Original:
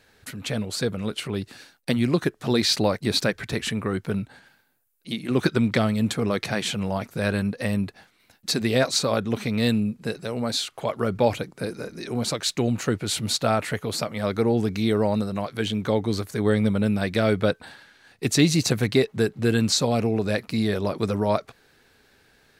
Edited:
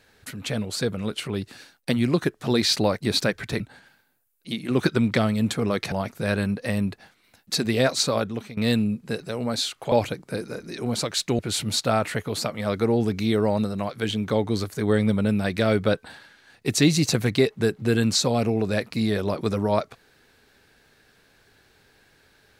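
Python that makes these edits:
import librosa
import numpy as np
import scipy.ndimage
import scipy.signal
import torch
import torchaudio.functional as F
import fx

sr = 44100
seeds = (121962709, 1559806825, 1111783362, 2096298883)

y = fx.edit(x, sr, fx.cut(start_s=3.6, length_s=0.6),
    fx.cut(start_s=6.52, length_s=0.36),
    fx.fade_out_to(start_s=9.1, length_s=0.43, floor_db=-18.0),
    fx.cut(start_s=10.88, length_s=0.33),
    fx.cut(start_s=12.68, length_s=0.28), tone=tone)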